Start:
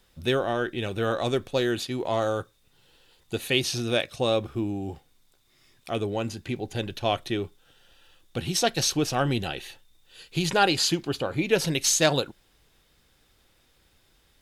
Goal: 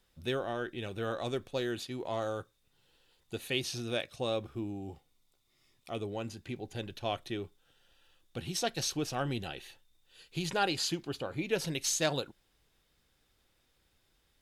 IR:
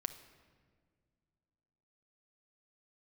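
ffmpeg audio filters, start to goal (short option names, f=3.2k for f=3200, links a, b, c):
-filter_complex "[0:a]asettb=1/sr,asplit=3[a][b][c];[a]atrim=end=4.594[d];[b]atrim=start=4.59:end=6.12,asetpts=PTS-STARTPTS,afade=t=in:d=0.004:c=qsin,afade=t=out:st=1.526:d=0.004:c=qsin,bandreject=f=1.6k:w=6.1[e];[c]atrim=start=6.116[f];[d][e]acrossfade=d=0.004:c1=hsin:c2=qsin[g];[g][f]acrossfade=d=0.004:c1=qsin:c2=hsin,volume=-9dB"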